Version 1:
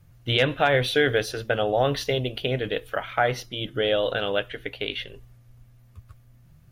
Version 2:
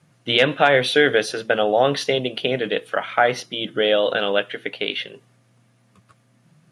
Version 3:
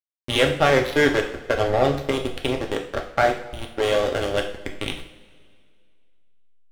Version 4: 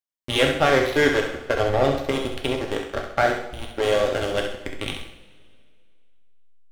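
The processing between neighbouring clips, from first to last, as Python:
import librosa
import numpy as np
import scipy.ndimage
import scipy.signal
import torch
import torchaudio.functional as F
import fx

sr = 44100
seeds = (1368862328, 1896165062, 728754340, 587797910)

y1 = scipy.signal.sosfilt(scipy.signal.ellip(3, 1.0, 50, [170.0, 9800.0], 'bandpass', fs=sr, output='sos'), x)
y1 = y1 * 10.0 ** (5.5 / 20.0)
y2 = fx.diode_clip(y1, sr, knee_db=-6.5)
y2 = fx.backlash(y2, sr, play_db=-13.5)
y2 = fx.rev_double_slope(y2, sr, seeds[0], early_s=0.51, late_s=2.2, knee_db=-18, drr_db=2.0)
y2 = y2 * 10.0 ** (-1.0 / 20.0)
y3 = fx.echo_feedback(y2, sr, ms=66, feedback_pct=38, wet_db=-7.0)
y3 = y3 * 10.0 ** (-1.0 / 20.0)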